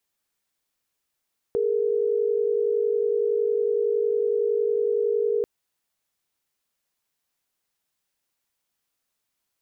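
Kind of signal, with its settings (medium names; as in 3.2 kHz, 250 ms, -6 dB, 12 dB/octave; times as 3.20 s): chord G#4/A#4 sine, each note -23 dBFS 3.89 s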